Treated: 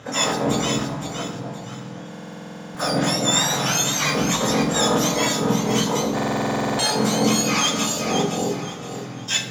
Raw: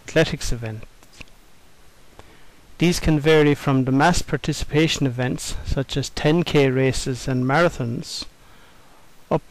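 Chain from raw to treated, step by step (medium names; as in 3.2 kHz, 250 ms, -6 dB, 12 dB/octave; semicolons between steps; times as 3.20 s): spectrum inverted on a logarithmic axis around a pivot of 1.3 kHz; low-pass 4.1 kHz 12 dB/octave; peaking EQ 330 Hz -7 dB 1.8 oct; reverse; compression 5:1, threshold -31 dBFS, peak gain reduction 13.5 dB; reverse; saturation -30.5 dBFS, distortion -13 dB; harmony voices +12 st -2 dB; echo whose repeats swap between lows and highs 259 ms, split 880 Hz, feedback 57%, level -2.5 dB; reverberation RT60 1.2 s, pre-delay 3 ms, DRR 2 dB; buffer glitch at 2.10/6.14 s, samples 2048, times 13; trim +8.5 dB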